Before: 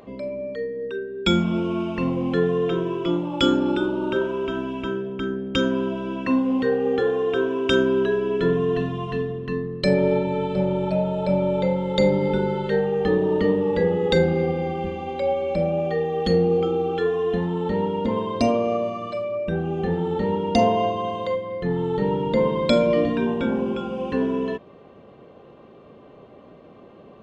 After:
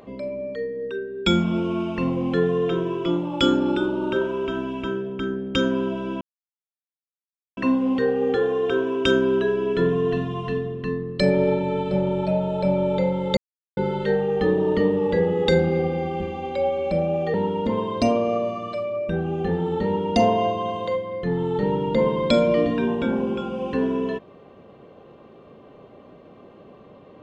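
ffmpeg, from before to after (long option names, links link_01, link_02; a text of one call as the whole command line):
ffmpeg -i in.wav -filter_complex "[0:a]asplit=5[link_01][link_02][link_03][link_04][link_05];[link_01]atrim=end=6.21,asetpts=PTS-STARTPTS,afade=type=out:start_time=6.206:duration=0.004:curve=hsin,apad=pad_dur=1.36[link_06];[link_02]atrim=start=6.21:end=12.01,asetpts=PTS-STARTPTS,afade=type=in:duration=0.004:curve=hsin,afade=type=out:start_time=5.796:duration=0.004:curve=hsin[link_07];[link_03]atrim=start=12.01:end=12.41,asetpts=PTS-STARTPTS,volume=0[link_08];[link_04]atrim=start=12.41:end=15.982,asetpts=PTS-STARTPTS,afade=type=in:duration=0.004:curve=hsin[link_09];[link_05]atrim=start=17.728[link_10];[link_06][link_07][link_08][link_09]concat=n=4:v=0:a=1[link_11];[link_11][link_10]acrossfade=duration=0.004:curve1=hsin:curve2=hsin" out.wav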